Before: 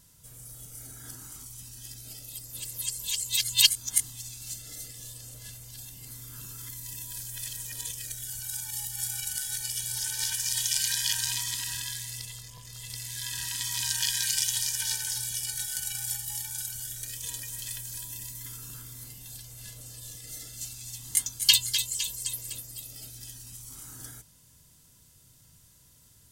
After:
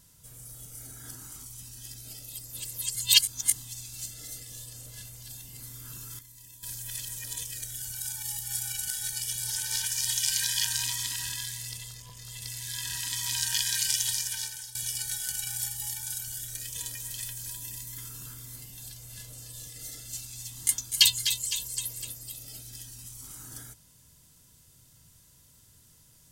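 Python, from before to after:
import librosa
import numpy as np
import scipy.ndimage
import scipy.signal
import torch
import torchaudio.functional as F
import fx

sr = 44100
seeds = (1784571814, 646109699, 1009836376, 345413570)

y = fx.edit(x, sr, fx.cut(start_s=2.95, length_s=0.48),
    fx.clip_gain(start_s=6.67, length_s=0.44, db=-11.0),
    fx.fade_out_to(start_s=14.59, length_s=0.64, floor_db=-15.0), tone=tone)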